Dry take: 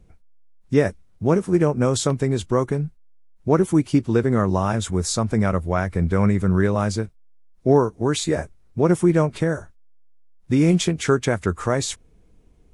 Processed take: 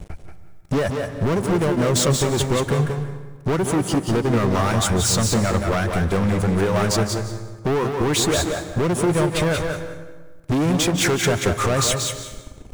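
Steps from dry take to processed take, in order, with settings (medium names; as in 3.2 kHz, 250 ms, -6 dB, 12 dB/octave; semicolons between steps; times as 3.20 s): reverb removal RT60 0.7 s; compression, threshold -28 dBFS, peak gain reduction 16 dB; waveshaping leveller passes 5; thinning echo 182 ms, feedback 16%, high-pass 150 Hz, level -5 dB; on a send at -10 dB: reverberation RT60 1.4 s, pre-delay 145 ms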